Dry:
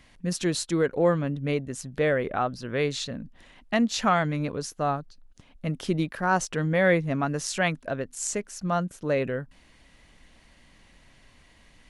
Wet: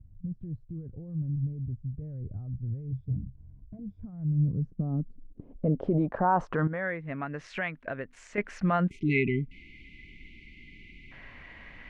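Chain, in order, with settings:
0:02.90–0:04.04: EQ curve with evenly spaced ripples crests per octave 1.7, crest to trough 17 dB
0:06.67–0:08.38: downward compressor 6 to 1, threshold −40 dBFS, peak gain reduction 21.5 dB
0:08.90–0:11.12: time-frequency box erased 430–2,000 Hz
brickwall limiter −24.5 dBFS, peak gain reduction 15 dB
low-pass filter sweep 100 Hz → 2,100 Hz, 0:04.17–0:07.08
level +6 dB

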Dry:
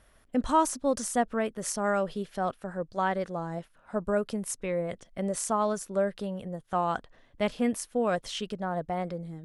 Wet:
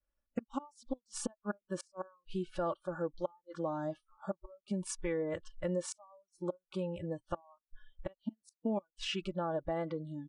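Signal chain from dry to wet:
gate with flip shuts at −19 dBFS, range −32 dB
wrong playback speed 48 kHz file played as 44.1 kHz
low-pass filter 2,900 Hz 6 dB per octave
low-shelf EQ 97 Hz +5.5 dB
downward expander −55 dBFS
comb filter 3.5 ms, depth 64%
downward compressor 2.5 to 1, threshold −35 dBFS, peak gain reduction 8 dB
noise reduction from a noise print of the clip's start 30 dB
level +1.5 dB

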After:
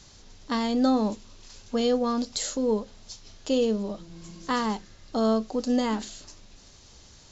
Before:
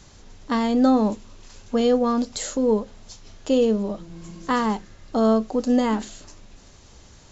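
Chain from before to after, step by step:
parametric band 4,700 Hz +7.5 dB 1.3 octaves
level −5 dB

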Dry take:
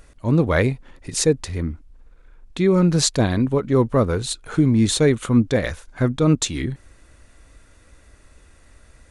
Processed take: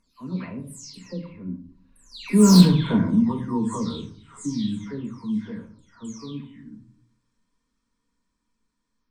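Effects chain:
every frequency bin delayed by itself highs early, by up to 398 ms
source passing by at 0:02.60, 33 m/s, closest 3.4 metres
parametric band 4,700 Hz +12.5 dB 1.9 octaves
in parallel at −1 dB: downward compressor, threshold −33 dBFS, peak gain reduction 22.5 dB
on the sum: soft clipping −15 dBFS, distortion −7 dB
hollow resonant body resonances 230/990 Hz, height 18 dB, ringing for 35 ms
on a send at −4 dB: convolution reverb RT60 0.50 s, pre-delay 4 ms
on the sum: level −5 dB

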